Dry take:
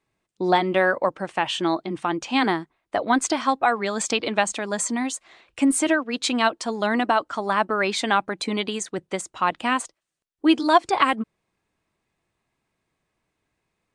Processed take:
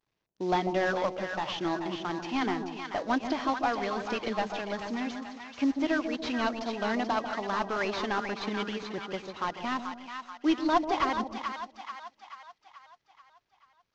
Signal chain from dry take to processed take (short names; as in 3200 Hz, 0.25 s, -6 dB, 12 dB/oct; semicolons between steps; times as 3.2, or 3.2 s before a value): CVSD 32 kbps; split-band echo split 800 Hz, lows 0.144 s, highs 0.434 s, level -6 dB; gain -7.5 dB